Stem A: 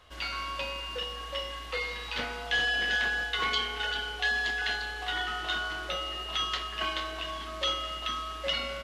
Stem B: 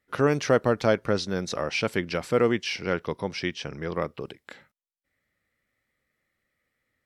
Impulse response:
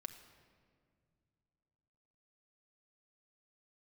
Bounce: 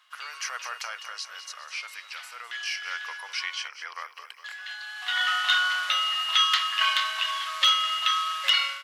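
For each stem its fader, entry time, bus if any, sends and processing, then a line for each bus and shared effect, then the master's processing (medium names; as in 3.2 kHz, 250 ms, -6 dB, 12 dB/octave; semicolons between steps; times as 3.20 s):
-1.0 dB, 0.00 s, muted 3.68–4.44 s, no send, no echo send, auto duck -19 dB, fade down 0.65 s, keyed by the second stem
0.69 s -6.5 dB -> 1.45 s -16.5 dB -> 2.35 s -16.5 dB -> 3.02 s -8.5 dB, 0.00 s, no send, echo send -12 dB, treble shelf 9.5 kHz +8.5 dB; band-stop 3.6 kHz, Q 5.1; peak limiter -17 dBFS, peak gain reduction 9 dB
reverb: none
echo: feedback delay 204 ms, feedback 56%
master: wavefolder -20.5 dBFS; level rider gain up to 11 dB; high-pass 1.1 kHz 24 dB/octave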